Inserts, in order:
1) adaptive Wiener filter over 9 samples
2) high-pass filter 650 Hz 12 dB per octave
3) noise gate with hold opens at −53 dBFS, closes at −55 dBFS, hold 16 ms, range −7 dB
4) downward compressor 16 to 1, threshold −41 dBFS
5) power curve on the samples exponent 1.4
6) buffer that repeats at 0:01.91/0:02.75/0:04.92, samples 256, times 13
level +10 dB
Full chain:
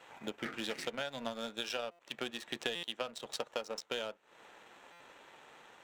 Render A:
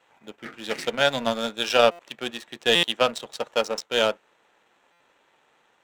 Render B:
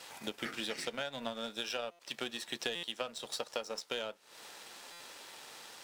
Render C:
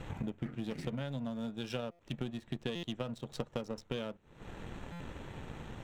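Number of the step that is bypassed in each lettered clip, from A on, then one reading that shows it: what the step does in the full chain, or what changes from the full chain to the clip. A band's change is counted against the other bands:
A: 4, average gain reduction 8.0 dB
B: 1, 8 kHz band +3.5 dB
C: 2, 125 Hz band +22.5 dB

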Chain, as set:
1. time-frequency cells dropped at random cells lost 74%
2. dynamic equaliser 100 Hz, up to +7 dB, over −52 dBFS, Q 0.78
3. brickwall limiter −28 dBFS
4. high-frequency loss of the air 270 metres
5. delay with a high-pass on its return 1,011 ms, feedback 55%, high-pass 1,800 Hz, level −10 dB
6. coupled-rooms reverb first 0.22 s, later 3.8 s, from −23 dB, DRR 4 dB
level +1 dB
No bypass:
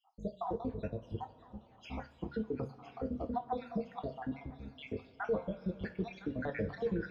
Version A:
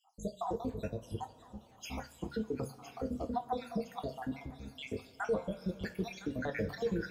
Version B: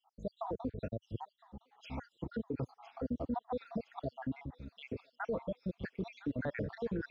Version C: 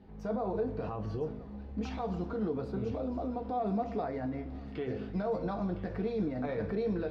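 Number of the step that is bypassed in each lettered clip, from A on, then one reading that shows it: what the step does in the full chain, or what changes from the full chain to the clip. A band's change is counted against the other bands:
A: 4, 4 kHz band +6.0 dB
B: 6, change in momentary loudness spread −1 LU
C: 1, 2 kHz band −6.5 dB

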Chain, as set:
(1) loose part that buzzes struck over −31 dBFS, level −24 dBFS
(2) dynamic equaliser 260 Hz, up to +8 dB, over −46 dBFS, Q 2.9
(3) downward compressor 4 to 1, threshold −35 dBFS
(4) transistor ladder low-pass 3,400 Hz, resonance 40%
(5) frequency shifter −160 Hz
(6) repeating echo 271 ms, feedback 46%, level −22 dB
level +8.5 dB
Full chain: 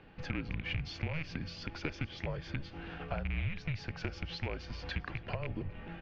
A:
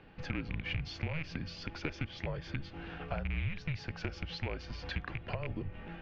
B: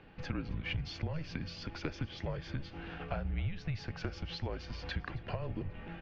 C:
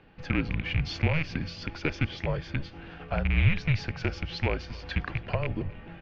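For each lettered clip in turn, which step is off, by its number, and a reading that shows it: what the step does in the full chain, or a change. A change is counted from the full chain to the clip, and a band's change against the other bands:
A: 6, echo-to-direct ratio −21.0 dB to none audible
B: 1, 2 kHz band −3.5 dB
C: 3, average gain reduction 6.5 dB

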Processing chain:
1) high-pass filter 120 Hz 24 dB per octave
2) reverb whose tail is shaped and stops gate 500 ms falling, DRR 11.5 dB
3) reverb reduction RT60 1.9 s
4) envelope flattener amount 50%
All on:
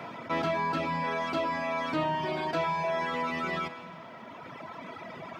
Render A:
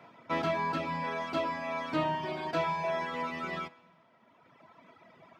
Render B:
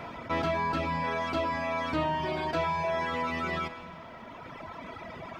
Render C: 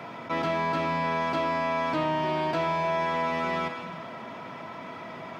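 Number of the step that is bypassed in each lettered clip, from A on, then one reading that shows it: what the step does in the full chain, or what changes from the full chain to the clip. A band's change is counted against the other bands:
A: 4, change in crest factor +2.0 dB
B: 1, 125 Hz band +2.0 dB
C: 3, change in integrated loudness +2.5 LU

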